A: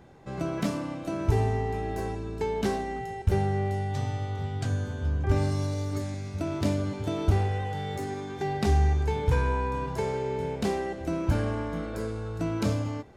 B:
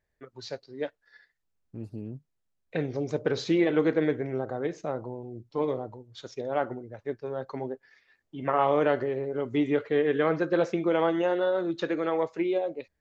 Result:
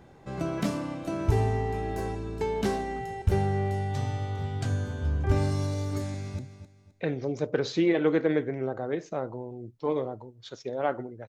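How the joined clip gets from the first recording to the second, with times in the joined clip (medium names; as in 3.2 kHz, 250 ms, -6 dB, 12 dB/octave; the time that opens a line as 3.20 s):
A
6.09–6.39 s: echo throw 260 ms, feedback 30%, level -11.5 dB
6.39 s: go over to B from 2.11 s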